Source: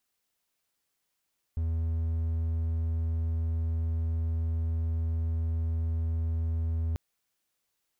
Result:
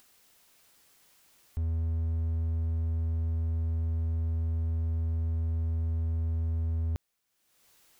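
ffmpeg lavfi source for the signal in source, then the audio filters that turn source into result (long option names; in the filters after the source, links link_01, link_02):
-f lavfi -i "aevalsrc='0.0596*(1-4*abs(mod(81.5*t+0.25,1)-0.5))':duration=5.39:sample_rate=44100"
-af "acompressor=mode=upward:threshold=-47dB:ratio=2.5"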